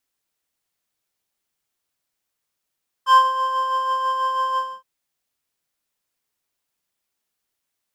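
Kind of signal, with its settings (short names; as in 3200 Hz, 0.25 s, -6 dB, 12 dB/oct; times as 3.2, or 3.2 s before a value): synth patch with tremolo C6, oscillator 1 square, oscillator 2 saw, interval +7 st, detune 8 cents, oscillator 2 level -8 dB, sub -20 dB, noise -24 dB, filter bandpass, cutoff 160 Hz, Q 0.84, filter envelope 3.5 oct, filter decay 0.22 s, attack 0.111 s, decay 0.06 s, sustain -8 dB, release 0.25 s, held 1.52 s, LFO 6.1 Hz, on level 4 dB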